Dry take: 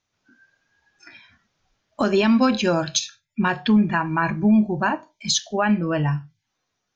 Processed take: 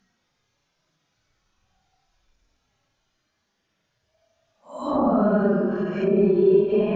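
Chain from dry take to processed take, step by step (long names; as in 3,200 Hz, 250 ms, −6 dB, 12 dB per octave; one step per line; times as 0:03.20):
extreme stretch with random phases 9.1×, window 0.05 s, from 0:01.46
treble cut that deepens with the level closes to 960 Hz, closed at −17 dBFS
every ending faded ahead of time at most 100 dB per second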